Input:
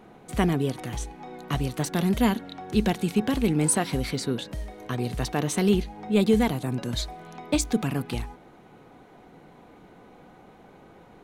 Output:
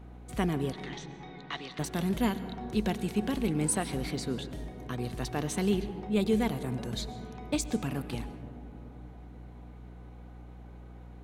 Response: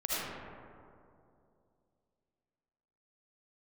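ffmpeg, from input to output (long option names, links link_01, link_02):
-filter_complex "[0:a]aeval=exprs='val(0)+0.01*(sin(2*PI*60*n/s)+sin(2*PI*2*60*n/s)/2+sin(2*PI*3*60*n/s)/3+sin(2*PI*4*60*n/s)/4+sin(2*PI*5*60*n/s)/5)':channel_layout=same,asettb=1/sr,asplit=3[link_01][link_02][link_03];[link_01]atrim=end=0.734[link_04];[link_02]atrim=start=0.73:end=1.79,asetpts=PTS-STARTPTS,afade=type=in:duration=0.004:curve=qsin,afade=type=out:start_time=1.056:duration=0.004:curve=qsin,highpass=450,equalizer=frequency=570:width_type=q:width=4:gain=-7,equalizer=frequency=2000:width_type=q:width=4:gain=8,equalizer=frequency=3700:width_type=q:width=4:gain=9,lowpass=frequency=5700:width=0.5412,lowpass=frequency=5700:width=1.3066[link_05];[link_03]atrim=start=1.786[link_06];[link_04][link_05]acrossfade=duration=0.004:curve1=hsin:curve2=qsin[link_07];[link_07][link_06]acrossfade=duration=0.004:curve1=qsin:curve2=hsin,asplit=2[link_08][link_09];[1:a]atrim=start_sample=2205,asetrate=26019,aresample=44100[link_10];[link_09][link_10]afir=irnorm=-1:irlink=0,volume=-22dB[link_11];[link_08][link_11]amix=inputs=2:normalize=0,volume=-7dB"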